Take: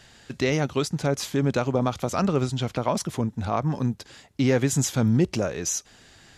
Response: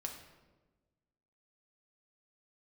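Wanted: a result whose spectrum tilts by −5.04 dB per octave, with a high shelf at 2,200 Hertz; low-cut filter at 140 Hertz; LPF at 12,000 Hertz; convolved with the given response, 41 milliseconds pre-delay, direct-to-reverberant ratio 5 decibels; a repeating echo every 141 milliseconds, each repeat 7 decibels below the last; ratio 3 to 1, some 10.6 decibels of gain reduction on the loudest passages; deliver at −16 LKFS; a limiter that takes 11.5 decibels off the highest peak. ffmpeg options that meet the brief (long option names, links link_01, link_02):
-filter_complex "[0:a]highpass=140,lowpass=12000,highshelf=frequency=2200:gain=-6.5,acompressor=threshold=-33dB:ratio=3,alimiter=level_in=6dB:limit=-24dB:level=0:latency=1,volume=-6dB,aecho=1:1:141|282|423|564|705:0.447|0.201|0.0905|0.0407|0.0183,asplit=2[link_01][link_02];[1:a]atrim=start_sample=2205,adelay=41[link_03];[link_02][link_03]afir=irnorm=-1:irlink=0,volume=-3.5dB[link_04];[link_01][link_04]amix=inputs=2:normalize=0,volume=22dB"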